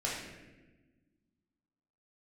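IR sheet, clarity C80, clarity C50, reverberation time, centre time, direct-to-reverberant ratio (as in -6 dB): 3.5 dB, 0.5 dB, 1.2 s, 69 ms, -7.0 dB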